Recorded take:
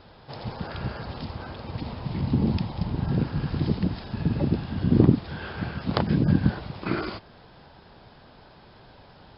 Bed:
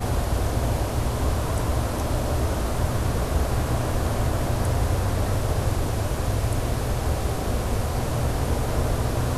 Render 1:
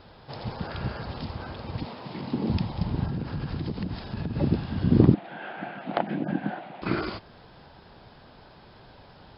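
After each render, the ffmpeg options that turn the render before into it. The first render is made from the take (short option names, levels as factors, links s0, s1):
-filter_complex "[0:a]asettb=1/sr,asplit=3[s0][s1][s2];[s0]atrim=end=1.854[s3];[s1]atrim=start=1.85:end=2.5,asetpts=PTS-STARTPTS,afade=t=in:d=0.004:c=qsin,afade=t=out:st=0.646:d=0.004:c=qsin,highpass=260[s4];[s2]atrim=start=2.496[s5];[s3][s4]acrossfade=d=0.004:c1=hsin:c2=qsin[s6];[s6][s5]acrossfade=d=0.004:c1=qsin:c2=hsin,asettb=1/sr,asplit=3[s7][s8][s9];[s7]atrim=end=3.064[s10];[s8]atrim=start=3.06:end=4.37,asetpts=PTS-STARTPTS,afade=t=in:d=0.004:c=qsin,afade=t=out:st=1.306:d=0.004:c=qsin,acompressor=threshold=0.0501:ratio=10:attack=3.2:release=140:knee=1:detection=peak[s11];[s9]atrim=start=4.366[s12];[s10][s11]acrossfade=d=0.004:c1=hsin:c2=qsin[s13];[s13][s12]acrossfade=d=0.004:c1=qsin:c2=hsin,asettb=1/sr,asplit=3[s14][s15][s16];[s14]atrim=end=5.144[s17];[s15]atrim=start=5.14:end=6.82,asetpts=PTS-STARTPTS,afade=t=in:d=0.004:c=qsin,afade=t=out:st=1.676:d=0.004:c=qsin,highpass=f=220:w=0.5412,highpass=f=220:w=1.3066,equalizer=f=240:t=q:w=4:g=-5,equalizer=f=430:t=q:w=4:g=-9,equalizer=f=720:t=q:w=4:g=9,equalizer=f=1100:t=q:w=4:g=-7,lowpass=f=2900:w=0.5412,lowpass=f=2900:w=1.3066[s18];[s16]atrim=start=6.816[s19];[s17][s18]acrossfade=d=0.004:c1=hsin:c2=qsin[s20];[s20][s19]acrossfade=d=0.004:c1=qsin:c2=hsin"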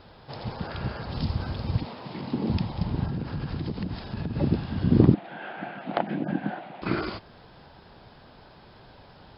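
-filter_complex "[0:a]asettb=1/sr,asplit=3[s0][s1][s2];[s0]atrim=end=1.124[s3];[s1]atrim=start=1.12:end=1.78,asetpts=PTS-STARTPTS,afade=t=in:d=0.004:c=qsin,afade=t=out:st=0.656:d=0.004:c=qsin,bass=f=250:g=9,treble=f=4000:g=8[s4];[s2]atrim=start=1.776[s5];[s3][s4]acrossfade=d=0.004:c1=hsin:c2=qsin[s6];[s6][s5]acrossfade=d=0.004:c1=qsin:c2=hsin"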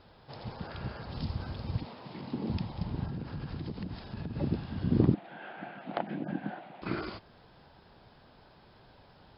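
-af "volume=0.447"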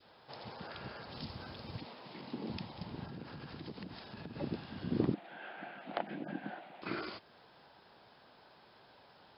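-af "highpass=f=460:p=1,adynamicequalizer=threshold=0.00224:dfrequency=950:dqfactor=0.98:tfrequency=950:tqfactor=0.98:attack=5:release=100:ratio=0.375:range=1.5:mode=cutabove:tftype=bell"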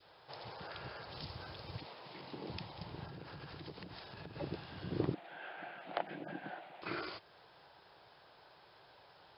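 -af "equalizer=f=230:w=3.1:g=-14"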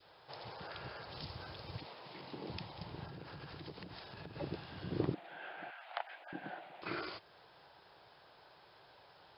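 -filter_complex "[0:a]asettb=1/sr,asplit=3[s0][s1][s2];[s0]atrim=end=5.704[s3];[s1]atrim=start=5.7:end=6.33,asetpts=PTS-STARTPTS,afade=t=in:d=0.004:c=qsin,afade=t=out:st=0.626:d=0.004:c=qsin,highpass=f=760:w=0.5412,highpass=f=760:w=1.3066[s4];[s2]atrim=start=6.326[s5];[s3][s4]acrossfade=d=0.004:c1=hsin:c2=qsin[s6];[s6][s5]acrossfade=d=0.004:c1=qsin:c2=hsin"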